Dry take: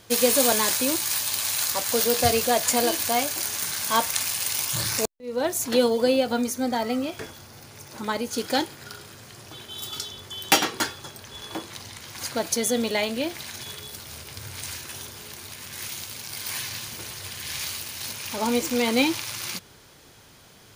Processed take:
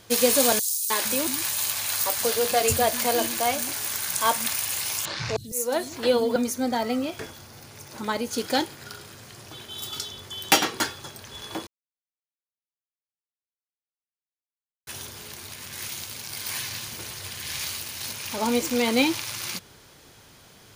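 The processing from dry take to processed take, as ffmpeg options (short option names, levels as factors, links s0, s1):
-filter_complex "[0:a]asettb=1/sr,asplit=3[s0][s1][s2];[s0]atrim=end=0.594[s3];[s1]atrim=start=0.59:end=6.36,asetpts=PTS-STARTPTS,afade=t=in:d=0.004:c=qsin,afade=t=out:st=5.766:d=0.004:c=qsin,acrossover=split=240|5100[s4][s5][s6];[s5]adelay=310[s7];[s4]adelay=460[s8];[s8][s7][s6]amix=inputs=3:normalize=0,atrim=end_sample=254457[s9];[s2]atrim=start=6.356[s10];[s3][s9]acrossfade=d=0.004:c1=hsin:c2=qsin[s11];[s11][s10]acrossfade=d=0.004:c1=qsin:c2=hsin,asplit=3[s12][s13][s14];[s12]atrim=end=11.67,asetpts=PTS-STARTPTS,afade=t=out:st=11.666:d=0.004:c=hsin[s15];[s13]atrim=start=11.67:end=14.87,asetpts=PTS-STARTPTS,volume=0[s16];[s14]atrim=start=14.87,asetpts=PTS-STARTPTS,afade=t=in:d=0.004:c=hsin[s17];[s15][s16][s17]concat=n=3:v=0:a=1"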